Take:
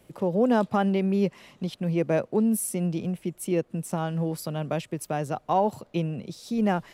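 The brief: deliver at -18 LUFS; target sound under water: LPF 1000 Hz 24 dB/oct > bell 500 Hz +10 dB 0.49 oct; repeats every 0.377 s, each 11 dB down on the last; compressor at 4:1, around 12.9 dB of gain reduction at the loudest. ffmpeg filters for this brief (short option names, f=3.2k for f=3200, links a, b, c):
-af "acompressor=threshold=-34dB:ratio=4,lowpass=f=1k:w=0.5412,lowpass=f=1k:w=1.3066,equalizer=f=500:t=o:w=0.49:g=10,aecho=1:1:377|754|1131:0.282|0.0789|0.0221,volume=16dB"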